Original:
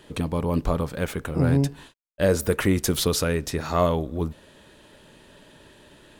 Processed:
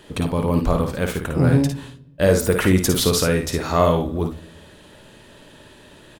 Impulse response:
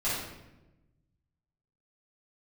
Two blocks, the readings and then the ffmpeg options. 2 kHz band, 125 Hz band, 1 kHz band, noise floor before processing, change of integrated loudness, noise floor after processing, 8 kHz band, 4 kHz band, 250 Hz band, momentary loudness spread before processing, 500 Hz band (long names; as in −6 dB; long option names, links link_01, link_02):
+5.0 dB, +4.5 dB, +5.0 dB, −53 dBFS, +4.5 dB, −47 dBFS, +5.0 dB, +5.0 dB, +5.0 dB, 7 LU, +5.0 dB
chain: -filter_complex "[0:a]aecho=1:1:54|70:0.501|0.237,asplit=2[link_01][link_02];[1:a]atrim=start_sample=2205[link_03];[link_02][link_03]afir=irnorm=-1:irlink=0,volume=-26.5dB[link_04];[link_01][link_04]amix=inputs=2:normalize=0,volume=3.5dB"